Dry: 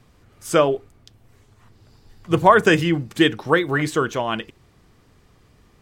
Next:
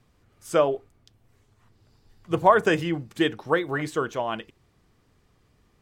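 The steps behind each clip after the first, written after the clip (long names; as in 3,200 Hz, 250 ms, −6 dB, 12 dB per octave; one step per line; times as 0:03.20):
dynamic equaliser 680 Hz, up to +6 dB, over −29 dBFS, Q 0.89
level −8.5 dB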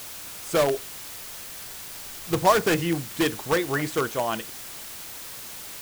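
in parallel at −5.5 dB: wrap-around overflow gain 16.5 dB
on the sum: background noise white −37 dBFS
level −2 dB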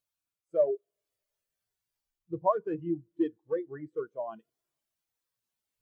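speech leveller within 3 dB 0.5 s
four-comb reverb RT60 3.3 s, combs from 26 ms, DRR 18.5 dB
every bin expanded away from the loudest bin 2.5 to 1
level −4 dB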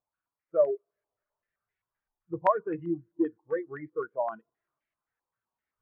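low-pass on a step sequencer 7.7 Hz 880–2,100 Hz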